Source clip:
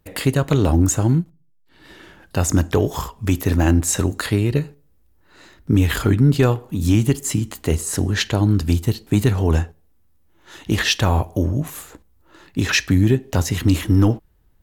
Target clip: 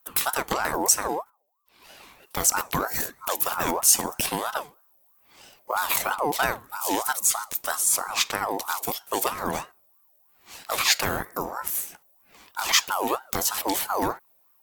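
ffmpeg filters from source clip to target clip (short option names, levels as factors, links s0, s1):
-af "aemphasis=mode=production:type=bsi,aeval=exprs='val(0)*sin(2*PI*880*n/s+880*0.35/3.1*sin(2*PI*3.1*n/s))':c=same,volume=0.75"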